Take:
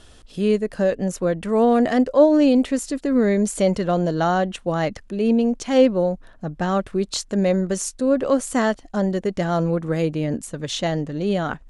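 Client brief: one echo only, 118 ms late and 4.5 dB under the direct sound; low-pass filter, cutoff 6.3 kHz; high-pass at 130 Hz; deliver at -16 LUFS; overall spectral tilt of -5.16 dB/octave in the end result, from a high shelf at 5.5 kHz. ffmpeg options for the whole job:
-af "highpass=130,lowpass=6300,highshelf=f=5500:g=-8.5,aecho=1:1:118:0.596,volume=1.58"

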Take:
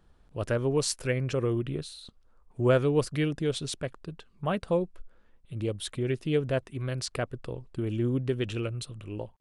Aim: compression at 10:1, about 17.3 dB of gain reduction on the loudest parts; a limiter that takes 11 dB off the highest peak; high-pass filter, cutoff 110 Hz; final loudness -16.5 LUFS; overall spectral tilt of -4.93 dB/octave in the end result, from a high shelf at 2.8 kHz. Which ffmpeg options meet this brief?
-af "highpass=110,highshelf=f=2800:g=5,acompressor=threshold=0.0178:ratio=10,volume=21.1,alimiter=limit=0.531:level=0:latency=1"

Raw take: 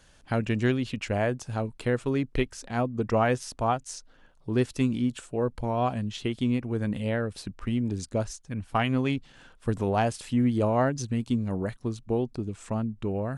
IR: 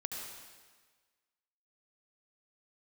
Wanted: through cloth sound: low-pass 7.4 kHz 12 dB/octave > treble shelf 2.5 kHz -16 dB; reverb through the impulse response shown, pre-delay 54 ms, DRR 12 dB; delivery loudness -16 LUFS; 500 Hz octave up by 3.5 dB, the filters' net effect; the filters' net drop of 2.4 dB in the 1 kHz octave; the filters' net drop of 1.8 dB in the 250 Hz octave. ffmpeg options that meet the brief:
-filter_complex "[0:a]equalizer=f=250:t=o:g=-3.5,equalizer=f=500:t=o:g=7.5,equalizer=f=1000:t=o:g=-5,asplit=2[s0][s1];[1:a]atrim=start_sample=2205,adelay=54[s2];[s1][s2]afir=irnorm=-1:irlink=0,volume=0.237[s3];[s0][s3]amix=inputs=2:normalize=0,lowpass=7400,highshelf=f=2500:g=-16,volume=3.98"

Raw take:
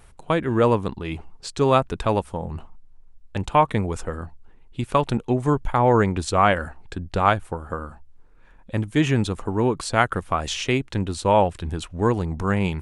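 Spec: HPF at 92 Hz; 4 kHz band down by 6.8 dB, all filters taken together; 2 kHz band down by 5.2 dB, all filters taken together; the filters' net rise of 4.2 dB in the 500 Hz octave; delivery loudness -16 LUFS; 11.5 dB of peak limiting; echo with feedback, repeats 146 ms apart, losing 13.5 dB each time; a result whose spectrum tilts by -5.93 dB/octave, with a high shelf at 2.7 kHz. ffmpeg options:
-af "highpass=92,equalizer=f=500:t=o:g=5.5,equalizer=f=2000:t=o:g=-5.5,highshelf=f=2700:g=-3,equalizer=f=4000:t=o:g=-4.5,alimiter=limit=0.224:level=0:latency=1,aecho=1:1:146|292:0.211|0.0444,volume=3.16"

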